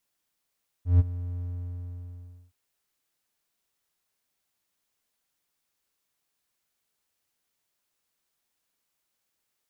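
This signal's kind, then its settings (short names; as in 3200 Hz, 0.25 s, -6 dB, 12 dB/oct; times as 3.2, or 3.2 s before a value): ADSR triangle 88.4 Hz, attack 0.145 s, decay 29 ms, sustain -17 dB, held 0.56 s, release 1.11 s -11 dBFS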